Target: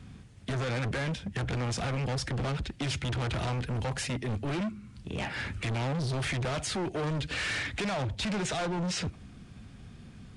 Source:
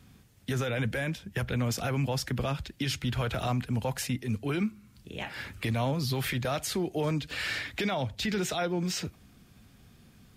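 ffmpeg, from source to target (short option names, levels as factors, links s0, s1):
-af "bass=f=250:g=4,treble=f=4000:g=-5,volume=53.1,asoftclip=hard,volume=0.0188,aresample=22050,aresample=44100,volume=1.78"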